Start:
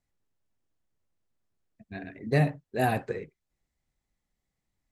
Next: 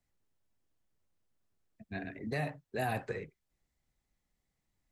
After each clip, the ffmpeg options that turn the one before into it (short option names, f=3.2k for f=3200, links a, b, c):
-filter_complex "[0:a]acrossover=split=190|560[a][b][c];[a]acompressor=threshold=-38dB:ratio=4[d];[b]acompressor=threshold=-43dB:ratio=4[e];[c]acompressor=threshold=-31dB:ratio=4[f];[d][e][f]amix=inputs=3:normalize=0,alimiter=level_in=1dB:limit=-24dB:level=0:latency=1:release=17,volume=-1dB"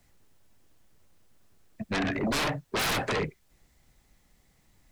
-af "aeval=exprs='0.0596*sin(PI/2*5.01*val(0)/0.0596)':c=same"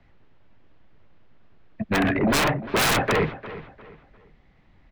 -filter_complex "[0:a]asplit=2[a][b];[b]adelay=351,lowpass=f=4.2k:p=1,volume=-15dB,asplit=2[c][d];[d]adelay=351,lowpass=f=4.2k:p=1,volume=0.33,asplit=2[e][f];[f]adelay=351,lowpass=f=4.2k:p=1,volume=0.33[g];[a][c][e][g]amix=inputs=4:normalize=0,acrossover=split=680|3400[h][i][j];[j]acrusher=bits=4:mix=0:aa=0.5[k];[h][i][k]amix=inputs=3:normalize=0,volume=7.5dB"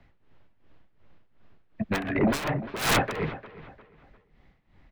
-af "tremolo=f=2.7:d=0.8"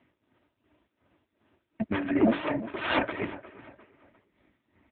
-af "aecho=1:1:3.2:0.8,aeval=exprs='0.398*(cos(1*acos(clip(val(0)/0.398,-1,1)))-cos(1*PI/2))+0.0112*(cos(6*acos(clip(val(0)/0.398,-1,1)))-cos(6*PI/2))':c=same" -ar 8000 -c:a libopencore_amrnb -b:a 5900